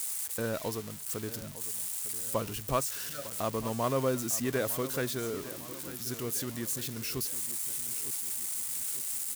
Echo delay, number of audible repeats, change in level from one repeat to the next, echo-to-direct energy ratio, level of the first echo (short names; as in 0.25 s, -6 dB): 0.903 s, 3, -6.0 dB, -14.0 dB, -15.0 dB